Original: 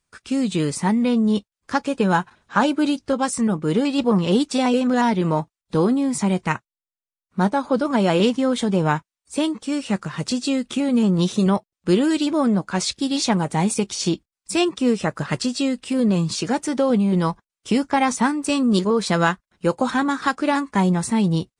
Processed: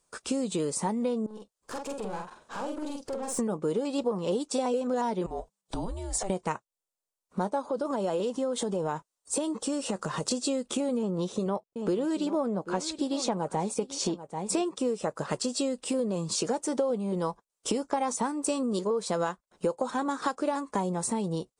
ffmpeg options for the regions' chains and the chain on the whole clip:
-filter_complex "[0:a]asettb=1/sr,asplit=3[s0][s1][s2];[s0]atrim=end=1.264[s3];[s1]atrim=start=1.26:end=3.39,asetpts=PTS-STARTPTS,afade=t=in:d=0.004:c=qsin,afade=t=out:st=2.126:d=0.004:c=qsin,acompressor=threshold=0.0251:ratio=8:attack=3.2:release=140:knee=1:detection=peak,aeval=exprs='(tanh(70.8*val(0)+0.6)-tanh(0.6))/70.8':c=same,asplit=2[s4][s5];[s5]adelay=46,volume=0.708[s6];[s4][s6]amix=inputs=2:normalize=0,atrim=end_sample=93933[s7];[s2]atrim=start=3.386[s8];[s3][s7]acrossfade=d=0.004:c1=hsin:c2=qsin[s9];[s9][s8]acrossfade=d=0.004:c1=qsin:c2=hsin,asettb=1/sr,asplit=3[s10][s11][s12];[s10]atrim=end=5.264[s13];[s11]atrim=start=5.26:end=6.3,asetpts=PTS-STARTPTS,afade=t=in:d=0.004:c=qsin,afade=t=out:st=1.036:d=0.004:c=qsin,acompressor=threshold=0.0355:ratio=5:attack=3.2:release=140:knee=1:detection=peak,afreqshift=-200[s14];[s12]atrim=start=6.296[s15];[s13][s14]acrossfade=d=0.004:c1=hsin:c2=qsin[s16];[s16][s15]acrossfade=d=0.004:c1=qsin:c2=hsin,asettb=1/sr,asplit=3[s17][s18][s19];[s17]atrim=end=7.664[s20];[s18]atrim=start=7.66:end=10.31,asetpts=PTS-STARTPTS,afade=t=in:d=0.004:c=qsin,afade=t=out:st=2.646:d=0.004:c=qsin,bandreject=f=2300:w=13,acompressor=threshold=0.0562:ratio=3:attack=3.2:release=140:knee=1:detection=peak[s21];[s19]atrim=start=10.306[s22];[s20][s21]acrossfade=d=0.004:c1=hsin:c2=qsin[s23];[s23][s22]acrossfade=d=0.004:c1=qsin:c2=hsin,asettb=1/sr,asplit=3[s24][s25][s26];[s24]atrim=end=10.974[s27];[s25]atrim=start=10.97:end=14.65,asetpts=PTS-STARTPTS,afade=t=in:d=0.004:c=qsin,afade=t=out:st=3.676:d=0.004:c=qsin,aemphasis=mode=reproduction:type=cd,aecho=1:1:787:0.141,atrim=end_sample=162288[s28];[s26]atrim=start=14.646[s29];[s27][s28]acrossfade=d=0.004:c1=hsin:c2=qsin[s30];[s30][s29]acrossfade=d=0.004:c1=qsin:c2=hsin,equalizer=f=125:t=o:w=1:g=5,equalizer=f=500:t=o:w=1:g=10,equalizer=f=1000:t=o:w=1:g=5,equalizer=f=2000:t=o:w=1:g=-5,equalizer=f=8000:t=o:w=1:g=8,acompressor=threshold=0.0501:ratio=6,equalizer=f=100:t=o:w=1.1:g=-13"

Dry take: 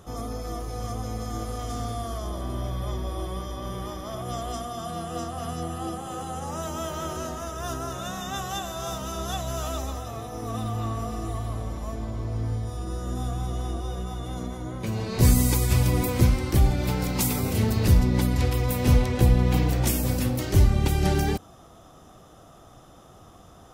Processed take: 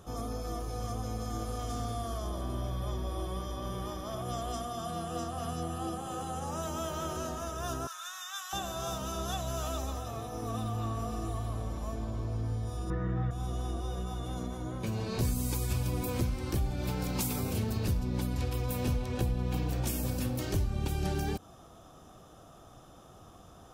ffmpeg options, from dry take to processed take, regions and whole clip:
-filter_complex "[0:a]asettb=1/sr,asplit=3[s0][s1][s2];[s0]atrim=end=7.874[s3];[s1]atrim=start=7.87:end=8.53,asetpts=PTS-STARTPTS,afade=t=in:d=0.004:c=qsin,afade=t=out:st=0.656:d=0.004:c=qsin,highpass=f=1200:w=0.5412,highpass=f=1200:w=1.3066,bandreject=f=2800:w=13[s4];[s2]atrim=start=8.526[s5];[s3][s4]acrossfade=d=0.004:c1=hsin:c2=qsin[s6];[s6][s5]acrossfade=d=0.004:c1=qsin:c2=hsin,asettb=1/sr,asplit=3[s7][s8][s9];[s7]atrim=end=12.904[s10];[s8]atrim=start=12.9:end=13.31,asetpts=PTS-STARTPTS,afade=t=in:d=0.004:c=qsin,afade=t=out:st=0.406:d=0.004:c=qsin,lowpass=f=1900:t=q:w=6.3,equalizer=f=110:w=0.53:g=9.5,aecho=1:1:6.3:0.78,atrim=end_sample=18081[s11];[s9]atrim=start=13.306[s12];[s10][s11]acrossfade=d=0.004:c1=hsin:c2=qsin[s13];[s13][s12]acrossfade=d=0.004:c1=qsin:c2=hsin,bandreject=f=2000:w=11,acompressor=threshold=0.0501:ratio=3,volume=0.668"

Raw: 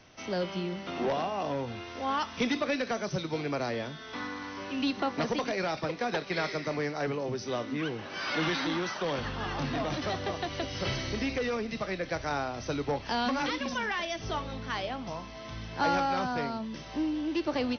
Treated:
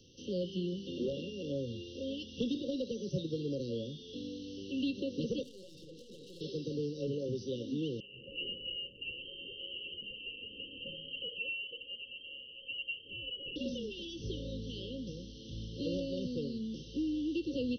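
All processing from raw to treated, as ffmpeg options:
-filter_complex "[0:a]asettb=1/sr,asplit=3[s0][s1][s2];[s0]atrim=end=5.434[s3];[s1]atrim=start=5.43:end=6.41,asetpts=PTS-STARTPTS,afade=t=in:d=0.004:c=qsin,afade=t=out:st=0.976:d=0.004:c=qsin,bandreject=f=60:t=h:w=6,bandreject=f=120:t=h:w=6,bandreject=f=180:t=h:w=6,bandreject=f=240:t=h:w=6,bandreject=f=300:t=h:w=6,bandreject=f=360:t=h:w=6,bandreject=f=420:t=h:w=6,bandreject=f=480:t=h:w=6,acompressor=threshold=0.0141:ratio=10:attack=3.2:release=140:knee=1:detection=peak,aeval=exprs='(tanh(178*val(0)+0.45)-tanh(0.45))/178':c=same[s4];[s2]atrim=start=6.406[s5];[s3][s4]acrossfade=d=0.004:c1=hsin:c2=qsin[s6];[s6][s5]acrossfade=d=0.004:c1=qsin:c2=hsin,asettb=1/sr,asplit=3[s7][s8][s9];[s7]atrim=end=8.004[s10];[s8]atrim=start=8:end=13.56,asetpts=PTS-STARTPTS,afade=t=in:d=0.004:c=qsin,afade=t=out:st=5.556:d=0.004:c=qsin,equalizer=f=120:t=o:w=2:g=-13,lowpass=f=2700:t=q:w=0.5098,lowpass=f=2700:t=q:w=0.6013,lowpass=f=2700:t=q:w=0.9,lowpass=f=2700:t=q:w=2.563,afreqshift=-3200[s11];[s9]atrim=start=13.556[s12];[s10][s11]acrossfade=d=0.004:c1=hsin:c2=qsin[s13];[s13][s12]acrossfade=d=0.004:c1=qsin:c2=hsin,acrossover=split=3300[s14][s15];[s15]acompressor=threshold=0.00224:ratio=4:attack=1:release=60[s16];[s14][s16]amix=inputs=2:normalize=0,afftfilt=real='re*(1-between(b*sr/4096,570,2700))':imag='im*(1-between(b*sr/4096,570,2700))':win_size=4096:overlap=0.75,acrossover=split=190|3000[s17][s18][s19];[s18]acompressor=threshold=0.0282:ratio=6[s20];[s17][s20][s19]amix=inputs=3:normalize=0,volume=0.841"

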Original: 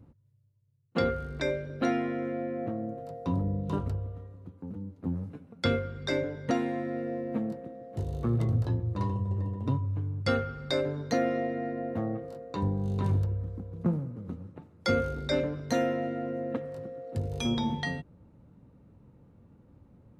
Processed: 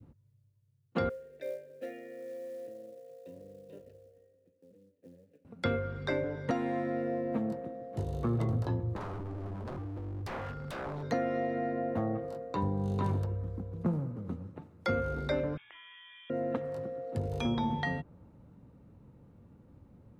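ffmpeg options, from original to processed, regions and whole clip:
-filter_complex "[0:a]asettb=1/sr,asplit=3[s0][s1][s2];[s0]atrim=end=1.094[s3];[s1]atrim=start=1.09:end=5.45,asetpts=PTS-STARTPTS,afade=t=in:d=0.004:c=qsin,afade=t=out:st=4.356:d=0.004:c=qsin,asplit=3[s4][s5][s6];[s4]bandpass=f=530:t=q:w=8,volume=1[s7];[s5]bandpass=f=1840:t=q:w=8,volume=0.501[s8];[s6]bandpass=f=2480:t=q:w=8,volume=0.355[s9];[s7][s8][s9]amix=inputs=3:normalize=0,equalizer=f=1100:w=0.61:g=-9,acrusher=bits=6:mode=log:mix=0:aa=0.000001[s10];[s2]atrim=start=5.446[s11];[s3][s10]acrossfade=d=0.004:c1=hsin:c2=qsin[s12];[s12][s11]acrossfade=d=0.004:c1=qsin:c2=hsin,asettb=1/sr,asplit=3[s13][s14][s15];[s13]atrim=end=8.964[s16];[s14]atrim=start=8.96:end=11.03,asetpts=PTS-STARTPTS,afade=t=in:d=0.004:c=qsin,afade=t=out:st=2.066:d=0.004:c=qsin,equalizer=f=2300:t=o:w=1.9:g=-6.5,acompressor=threshold=0.0251:ratio=2.5:attack=3.2:release=140:knee=1:detection=peak,aeval=exprs='0.0188*(abs(mod(val(0)/0.0188+3,4)-2)-1)':c=same[s17];[s15]atrim=start=11.026[s18];[s16][s17]acrossfade=d=0.004:c1=hsin:c2=qsin[s19];[s19][s18]acrossfade=d=0.004:c1=qsin:c2=hsin,asettb=1/sr,asplit=3[s20][s21][s22];[s20]atrim=end=15.574[s23];[s21]atrim=start=15.57:end=16.3,asetpts=PTS-STARTPTS,afade=t=in:d=0.004:c=qsin,afade=t=out:st=0.726:d=0.004:c=qsin,highpass=1300,acompressor=threshold=0.00355:ratio=16:attack=3.2:release=140:knee=1:detection=peak,lowpass=f=3200:t=q:w=0.5098,lowpass=f=3200:t=q:w=0.6013,lowpass=f=3200:t=q:w=0.9,lowpass=f=3200:t=q:w=2.563,afreqshift=-3800[s24];[s22]atrim=start=16.296[s25];[s23][s24]acrossfade=d=0.004:c1=hsin:c2=qsin[s26];[s26][s25]acrossfade=d=0.004:c1=qsin:c2=hsin,adynamicequalizer=threshold=0.00708:dfrequency=930:dqfactor=0.81:tfrequency=930:tqfactor=0.81:attack=5:release=100:ratio=0.375:range=2.5:mode=boostabove:tftype=bell,acrossover=split=140|3000[s27][s28][s29];[s27]acompressor=threshold=0.0178:ratio=4[s30];[s28]acompressor=threshold=0.0355:ratio=4[s31];[s29]acompressor=threshold=0.00158:ratio=4[s32];[s30][s31][s32]amix=inputs=3:normalize=0"

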